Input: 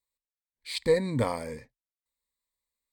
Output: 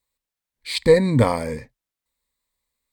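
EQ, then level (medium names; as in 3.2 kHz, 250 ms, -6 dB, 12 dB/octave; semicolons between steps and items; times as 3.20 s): tone controls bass +3 dB, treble -2 dB; +9.0 dB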